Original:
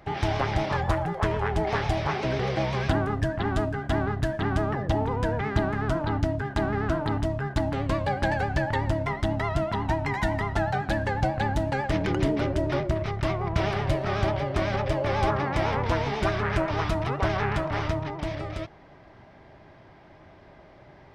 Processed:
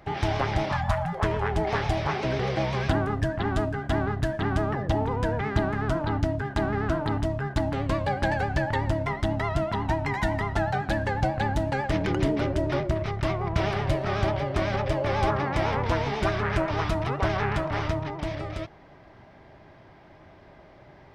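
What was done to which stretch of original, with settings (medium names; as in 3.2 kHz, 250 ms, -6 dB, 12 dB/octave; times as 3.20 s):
0.71–1.13 s: spectral selection erased 280–570 Hz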